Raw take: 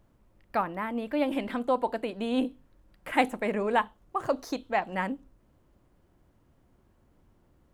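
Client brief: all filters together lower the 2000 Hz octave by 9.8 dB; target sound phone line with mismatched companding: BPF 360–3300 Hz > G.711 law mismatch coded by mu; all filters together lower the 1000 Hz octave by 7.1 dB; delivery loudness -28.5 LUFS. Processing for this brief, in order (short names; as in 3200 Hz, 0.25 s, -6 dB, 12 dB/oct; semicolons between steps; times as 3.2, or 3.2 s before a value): BPF 360–3300 Hz; bell 1000 Hz -7.5 dB; bell 2000 Hz -9 dB; G.711 law mismatch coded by mu; gain +6 dB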